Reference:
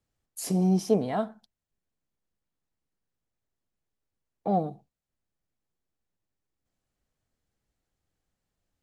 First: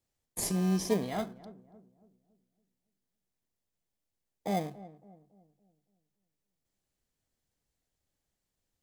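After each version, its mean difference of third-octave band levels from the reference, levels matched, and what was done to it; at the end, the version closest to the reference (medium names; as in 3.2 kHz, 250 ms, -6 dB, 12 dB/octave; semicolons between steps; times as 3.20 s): 8.5 dB: treble shelf 2.1 kHz +11 dB; in parallel at -6 dB: sample-rate reducer 1.4 kHz, jitter 0%; on the sum: filtered feedback delay 280 ms, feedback 45%, low-pass 840 Hz, level -16 dB; trim -8.5 dB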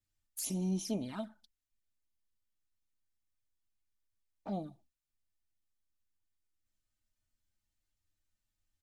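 4.0 dB: peaking EQ 480 Hz -14 dB 2.7 oct; comb 3.3 ms, depth 56%; touch-sensitive flanger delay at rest 9.7 ms, full sweep at -32 dBFS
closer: second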